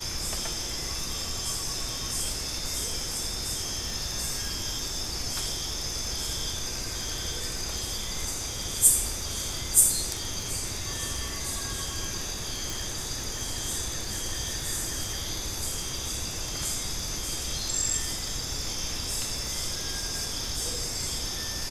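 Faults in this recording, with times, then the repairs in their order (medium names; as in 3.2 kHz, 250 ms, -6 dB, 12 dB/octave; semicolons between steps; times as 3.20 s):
crackle 40 per s -36 dBFS
12.70 s: pop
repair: de-click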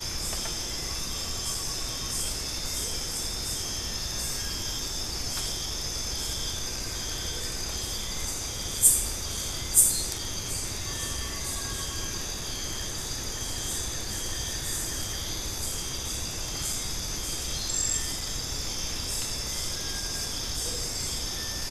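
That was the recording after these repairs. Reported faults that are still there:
12.70 s: pop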